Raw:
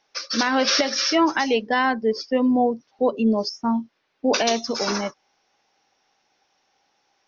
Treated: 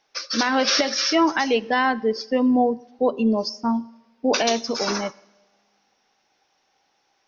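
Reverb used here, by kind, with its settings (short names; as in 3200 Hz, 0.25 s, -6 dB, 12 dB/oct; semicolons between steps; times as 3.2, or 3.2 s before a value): two-slope reverb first 0.9 s, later 2.5 s, DRR 18.5 dB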